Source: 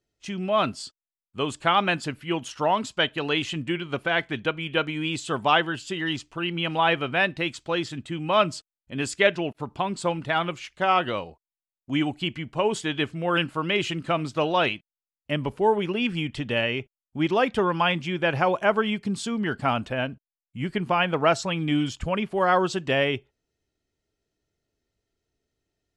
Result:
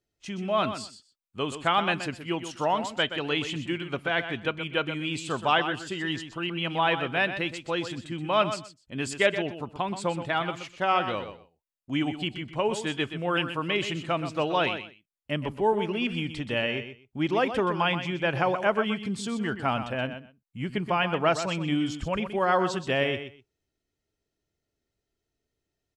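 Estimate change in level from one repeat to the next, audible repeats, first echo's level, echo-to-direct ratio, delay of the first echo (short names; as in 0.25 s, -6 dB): -15.5 dB, 2, -10.0 dB, -10.0 dB, 0.125 s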